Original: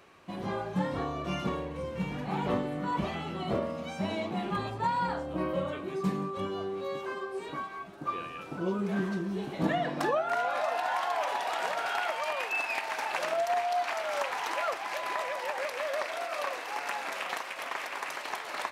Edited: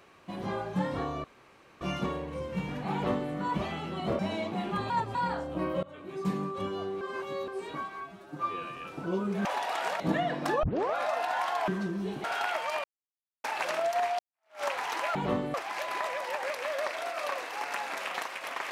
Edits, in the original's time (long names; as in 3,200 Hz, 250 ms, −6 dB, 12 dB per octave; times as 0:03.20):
0:01.24: splice in room tone 0.57 s
0:02.36–0:02.75: duplicate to 0:14.69
0:03.62–0:03.98: remove
0:04.69–0:04.94: reverse
0:05.62–0:06.12: fade in, from −21.5 dB
0:06.80–0:07.27: reverse
0:07.80–0:08.30: time-stretch 1.5×
0:08.99–0:09.55: swap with 0:11.23–0:11.78
0:10.18: tape start 0.32 s
0:12.38–0:12.98: silence
0:13.73–0:14.17: fade in exponential